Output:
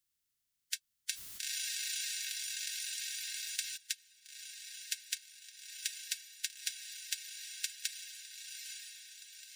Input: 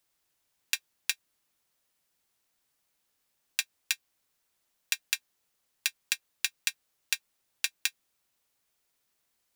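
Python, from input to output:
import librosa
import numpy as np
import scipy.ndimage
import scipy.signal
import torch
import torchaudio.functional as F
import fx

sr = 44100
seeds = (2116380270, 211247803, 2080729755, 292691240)

y = fx.spec_quant(x, sr, step_db=30)
y = fx.tone_stack(y, sr, knobs='6-0-2')
y = fx.notch(y, sr, hz=2400.0, q=23.0)
y = fx.echo_diffused(y, sr, ms=908, feedback_pct=52, wet_db=-5.0)
y = fx.env_flatten(y, sr, amount_pct=70, at=(1.11, 3.76), fade=0.02)
y = y * librosa.db_to_amplitude(8.5)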